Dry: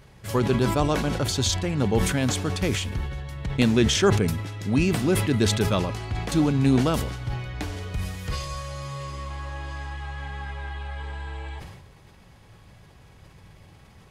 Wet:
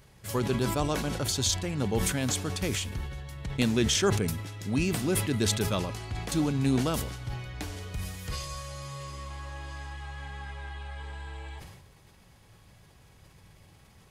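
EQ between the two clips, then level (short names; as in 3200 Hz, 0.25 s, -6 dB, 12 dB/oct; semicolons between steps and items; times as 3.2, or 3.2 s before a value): high shelf 5400 Hz +9 dB; -6.0 dB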